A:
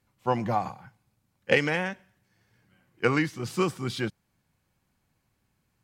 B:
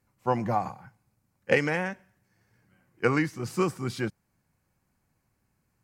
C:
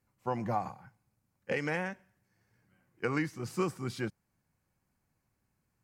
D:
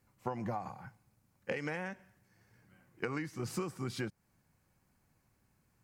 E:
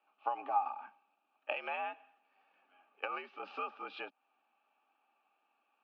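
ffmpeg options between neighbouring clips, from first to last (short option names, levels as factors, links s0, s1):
-af "equalizer=f=3400:w=2.1:g=-9"
-af "alimiter=limit=0.2:level=0:latency=1:release=121,volume=0.562"
-af "acompressor=threshold=0.0112:ratio=12,volume=1.88"
-filter_complex "[0:a]asplit=3[s0][s1][s2];[s0]bandpass=f=730:t=q:w=8,volume=1[s3];[s1]bandpass=f=1090:t=q:w=8,volume=0.501[s4];[s2]bandpass=f=2440:t=q:w=8,volume=0.355[s5];[s3][s4][s5]amix=inputs=3:normalize=0,highpass=f=150:t=q:w=0.5412,highpass=f=150:t=q:w=1.307,lowpass=f=3500:t=q:w=0.5176,lowpass=f=3500:t=q:w=0.7071,lowpass=f=3500:t=q:w=1.932,afreqshift=76,crystalizer=i=6.5:c=0,volume=2.82"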